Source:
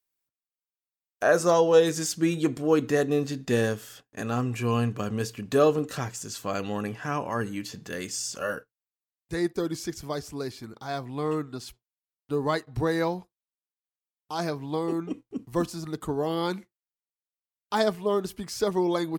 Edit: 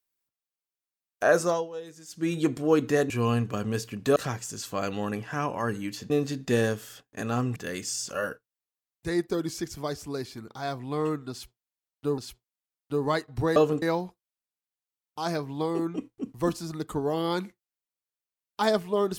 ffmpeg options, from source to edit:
-filter_complex "[0:a]asplit=10[s0][s1][s2][s3][s4][s5][s6][s7][s8][s9];[s0]atrim=end=1.69,asetpts=PTS-STARTPTS,afade=t=out:st=1.36:d=0.33:silence=0.105925[s10];[s1]atrim=start=1.69:end=2.06,asetpts=PTS-STARTPTS,volume=0.106[s11];[s2]atrim=start=2.06:end=3.102,asetpts=PTS-STARTPTS,afade=t=in:d=0.33:silence=0.105925[s12];[s3]atrim=start=4.558:end=5.622[s13];[s4]atrim=start=5.878:end=7.822[s14];[s5]atrim=start=3.098:end=4.562[s15];[s6]atrim=start=7.818:end=12.442[s16];[s7]atrim=start=11.568:end=12.952[s17];[s8]atrim=start=5.618:end=5.882[s18];[s9]atrim=start=12.948[s19];[s10][s11][s12]concat=n=3:v=0:a=1[s20];[s20][s13]acrossfade=d=0.004:c1=hsin:c2=hsin[s21];[s21][s14]acrossfade=d=0.004:c1=hsin:c2=hsin[s22];[s22][s15]acrossfade=d=0.004:c1=hsin:c2=hsin[s23];[s23][s16]acrossfade=d=0.004:c1=hsin:c2=hsin[s24];[s24][s17]acrossfade=d=0.004:c1=hsin:c2=hsin[s25];[s25][s18]acrossfade=d=0.004:c1=hsin:c2=hsin[s26];[s26][s19]acrossfade=d=0.004:c1=hsin:c2=hsin"

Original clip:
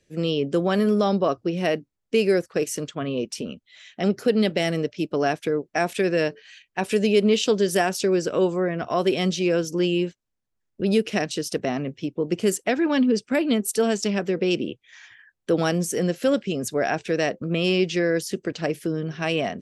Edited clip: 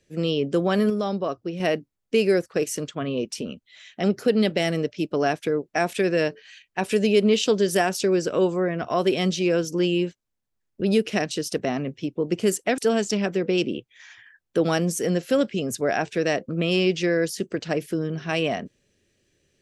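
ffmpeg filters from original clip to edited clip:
-filter_complex "[0:a]asplit=4[s0][s1][s2][s3];[s0]atrim=end=0.902[s4];[s1]atrim=start=0.898:end=1.602,asetpts=PTS-STARTPTS,volume=0.562[s5];[s2]atrim=start=1.598:end=12.782[s6];[s3]atrim=start=13.708[s7];[s4][s5]acrossfade=d=0.004:c1=hsin:c2=hsin[s8];[s8][s6]acrossfade=d=0.004:c1=hsin:c2=hsin[s9];[s9][s7]acrossfade=d=0.004:c1=hsin:c2=hsin"

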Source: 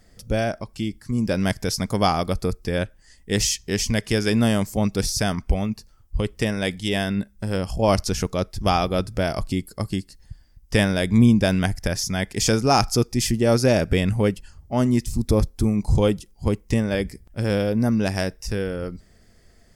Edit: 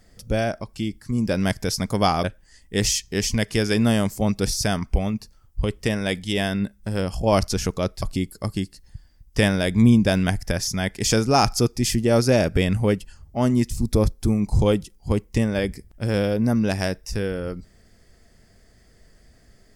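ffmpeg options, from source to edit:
-filter_complex "[0:a]asplit=3[s0][s1][s2];[s0]atrim=end=2.242[s3];[s1]atrim=start=2.798:end=8.582[s4];[s2]atrim=start=9.378[s5];[s3][s4]acrossfade=d=0.004:c1=hsin:c2=hsin[s6];[s6][s5]acrossfade=d=0.004:c1=hsin:c2=hsin"

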